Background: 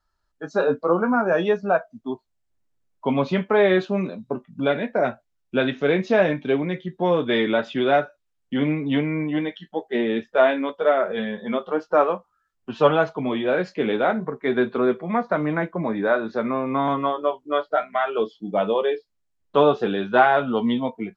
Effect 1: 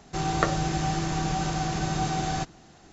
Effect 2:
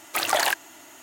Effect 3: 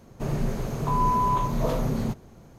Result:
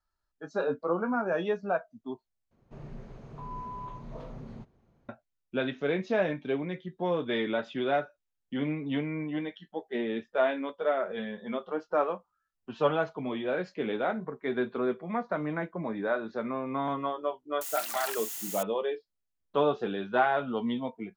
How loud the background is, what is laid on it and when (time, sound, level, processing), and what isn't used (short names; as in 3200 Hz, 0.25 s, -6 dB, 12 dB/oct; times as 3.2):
background -9 dB
2.51 replace with 3 -17 dB + LPF 3700 Hz
17.61 add 2 -16.5 dB + switching spikes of -15.5 dBFS
not used: 1